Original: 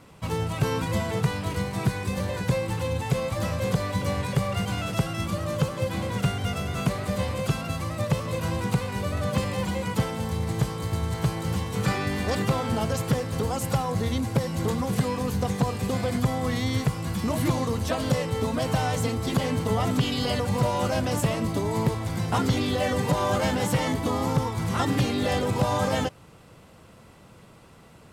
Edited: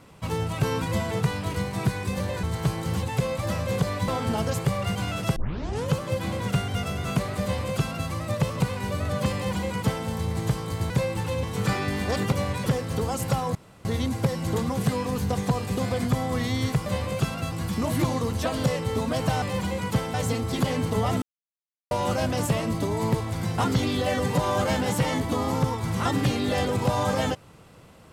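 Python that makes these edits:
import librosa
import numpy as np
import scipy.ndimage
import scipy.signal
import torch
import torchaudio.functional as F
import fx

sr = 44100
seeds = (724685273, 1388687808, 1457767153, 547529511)

y = fx.edit(x, sr, fx.swap(start_s=2.43, length_s=0.53, other_s=11.02, other_length_s=0.6),
    fx.swap(start_s=4.01, length_s=0.34, other_s=12.51, other_length_s=0.57),
    fx.tape_start(start_s=5.06, length_s=0.56),
    fx.duplicate(start_s=7.13, length_s=0.66, to_s=16.98),
    fx.cut(start_s=8.3, length_s=0.42),
    fx.duplicate(start_s=9.46, length_s=0.72, to_s=18.88),
    fx.insert_room_tone(at_s=13.97, length_s=0.3),
    fx.silence(start_s=19.96, length_s=0.69), tone=tone)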